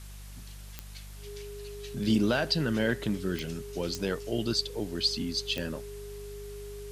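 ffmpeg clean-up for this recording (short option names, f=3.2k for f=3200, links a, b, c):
-af "adeclick=t=4,bandreject=f=49.7:t=h:w=4,bandreject=f=99.4:t=h:w=4,bandreject=f=149.1:t=h:w=4,bandreject=f=198.8:t=h:w=4,bandreject=f=410:w=30,afwtdn=0.0025"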